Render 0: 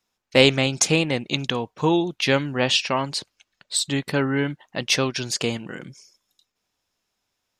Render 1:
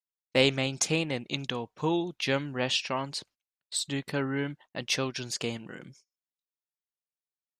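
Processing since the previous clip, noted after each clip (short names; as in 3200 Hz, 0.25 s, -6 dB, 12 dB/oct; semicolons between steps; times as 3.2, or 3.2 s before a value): gate -45 dBFS, range -29 dB; gain -8 dB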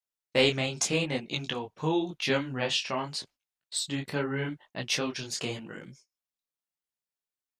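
detuned doubles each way 30 cents; gain +4 dB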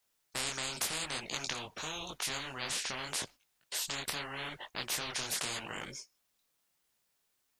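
spectral compressor 10:1; gain -7.5 dB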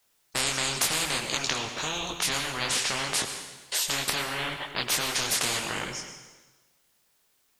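plate-style reverb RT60 1.2 s, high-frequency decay 0.95×, pre-delay 85 ms, DRR 7 dB; gain +8.5 dB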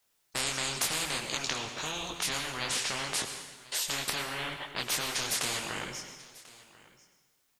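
echo 1.041 s -21 dB; gain -4.5 dB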